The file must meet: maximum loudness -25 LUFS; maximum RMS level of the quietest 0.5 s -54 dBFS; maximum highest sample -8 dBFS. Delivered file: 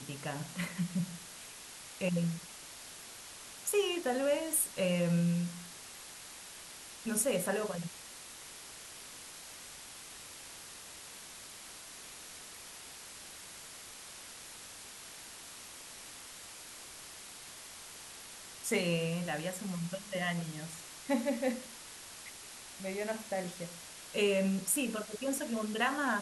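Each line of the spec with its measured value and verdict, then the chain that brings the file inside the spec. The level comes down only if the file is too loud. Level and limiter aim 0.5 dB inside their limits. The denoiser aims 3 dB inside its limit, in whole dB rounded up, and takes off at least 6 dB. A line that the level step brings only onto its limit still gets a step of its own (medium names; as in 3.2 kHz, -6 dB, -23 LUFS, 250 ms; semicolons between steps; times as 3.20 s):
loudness -37.5 LUFS: pass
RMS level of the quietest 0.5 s -50 dBFS: fail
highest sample -17.5 dBFS: pass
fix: noise reduction 7 dB, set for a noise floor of -50 dBFS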